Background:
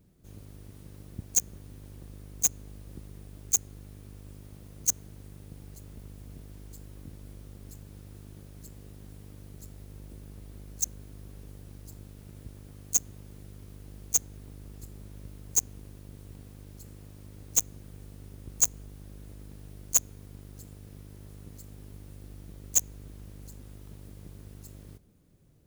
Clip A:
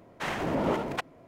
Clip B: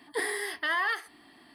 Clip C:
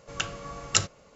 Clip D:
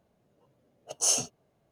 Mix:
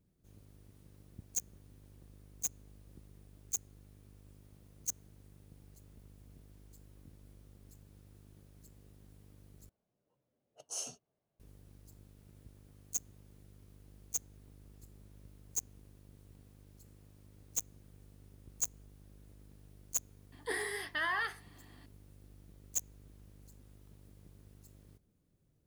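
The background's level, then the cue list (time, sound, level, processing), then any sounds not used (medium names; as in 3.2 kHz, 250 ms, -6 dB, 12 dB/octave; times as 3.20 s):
background -11.5 dB
9.69 s: replace with D -15.5 dB
20.32 s: add B -1.5 dB + flange 1.7 Hz, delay 6.5 ms, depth 5.6 ms, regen +73%
not used: A, C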